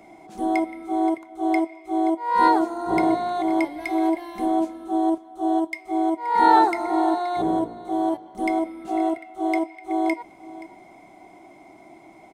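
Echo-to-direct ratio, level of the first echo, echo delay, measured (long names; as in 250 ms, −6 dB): −17.0 dB, −17.0 dB, 525 ms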